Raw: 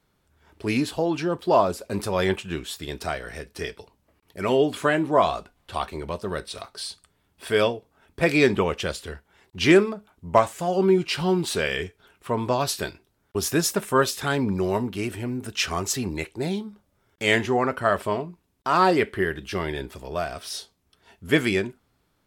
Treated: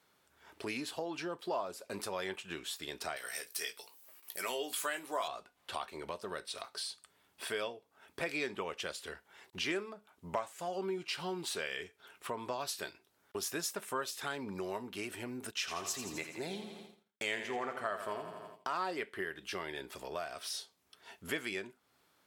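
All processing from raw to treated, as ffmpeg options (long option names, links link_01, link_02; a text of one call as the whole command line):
ffmpeg -i in.wav -filter_complex "[0:a]asettb=1/sr,asplit=3[link_01][link_02][link_03];[link_01]atrim=end=3.164[link_04];[link_02]atrim=start=3.16:end=5.28,asetpts=PTS-STARTPTS,afade=type=in:duration=0.004:curve=qsin,afade=type=out:start_time=2.116:duration=0.004:curve=qsin,aemphasis=mode=production:type=riaa,asplit=2[link_05][link_06];[link_06]adelay=17,volume=-7dB[link_07];[link_05][link_07]amix=inputs=2:normalize=0,atrim=end_sample=93492[link_08];[link_03]atrim=start=5.276[link_09];[link_04][link_08]acrossfade=duration=0.004:curve1=hsin:curve2=qsin[link_10];[link_10][link_09]acrossfade=duration=0.004:curve1=qsin:curve2=hsin,asettb=1/sr,asplit=3[link_11][link_12][link_13];[link_11]atrim=end=15.514[link_14];[link_12]atrim=start=15.51:end=18.75,asetpts=PTS-STARTPTS,afade=type=in:duration=0.004:curve=qsin,afade=type=out:start_time=3.236:duration=0.004:curve=qsin,aecho=1:1:84|168|252|336|420|504|588:0.316|0.187|0.11|0.0649|0.0383|0.0226|0.0133,atrim=end_sample=142884,agate=range=-33dB:threshold=-45dB:ratio=3:release=100:detection=peak[link_15];[link_13]atrim=start=18.746[link_16];[link_14][link_15]acrossfade=duration=0.004:curve1=hsin:curve2=qsin[link_17];[link_17][link_16]acrossfade=duration=0.004:curve1=qsin:curve2=hsin,highpass=frequency=620:poles=1,acompressor=threshold=-44dB:ratio=2.5,volume=2dB" out.wav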